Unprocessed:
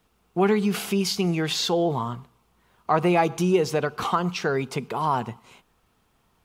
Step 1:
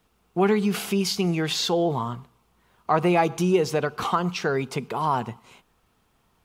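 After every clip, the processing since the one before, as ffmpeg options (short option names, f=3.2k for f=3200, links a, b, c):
-af anull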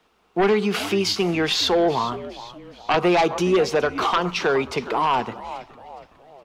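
-filter_complex "[0:a]asplit=5[a][b][c][d][e];[b]adelay=416,afreqshift=-100,volume=-16dB[f];[c]adelay=832,afreqshift=-200,volume=-22.7dB[g];[d]adelay=1248,afreqshift=-300,volume=-29.5dB[h];[e]adelay=1664,afreqshift=-400,volume=-36.2dB[i];[a][f][g][h][i]amix=inputs=5:normalize=0,acrossover=split=270|5800[j][k][l];[k]aeval=exprs='0.398*sin(PI/2*2.82*val(0)/0.398)':c=same[m];[j][m][l]amix=inputs=3:normalize=0,volume=-6dB"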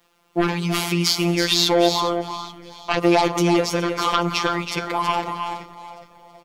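-af "afftfilt=real='hypot(re,im)*cos(PI*b)':imag='0':win_size=1024:overlap=0.75,crystalizer=i=1.5:c=0,aecho=1:1:326:0.447,volume=2.5dB"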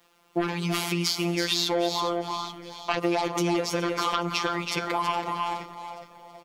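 -af "acompressor=threshold=-23dB:ratio=3,lowshelf=f=90:g=-8.5"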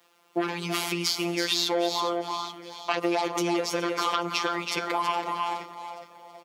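-af "highpass=240"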